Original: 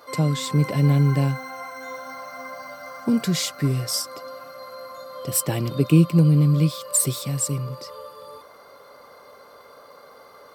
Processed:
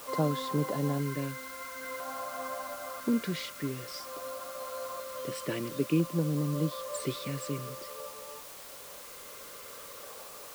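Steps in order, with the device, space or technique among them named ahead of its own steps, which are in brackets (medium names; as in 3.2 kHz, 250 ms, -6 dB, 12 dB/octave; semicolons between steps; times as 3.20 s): shortwave radio (band-pass 270–2700 Hz; tremolo 0.41 Hz, depth 49%; LFO notch square 0.5 Hz 780–2400 Hz; white noise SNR 13 dB)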